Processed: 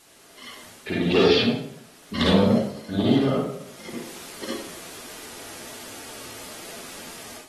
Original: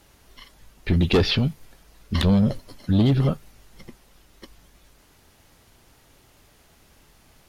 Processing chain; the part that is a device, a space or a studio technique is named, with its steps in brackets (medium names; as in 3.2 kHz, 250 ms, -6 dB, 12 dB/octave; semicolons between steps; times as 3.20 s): filmed off a television (band-pass 250–7200 Hz; peaking EQ 420 Hz +4 dB 0.53 oct; reverberation RT60 0.65 s, pre-delay 45 ms, DRR -6 dB; white noise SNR 26 dB; level rider gain up to 13 dB; trim -6 dB; AAC 32 kbps 44.1 kHz)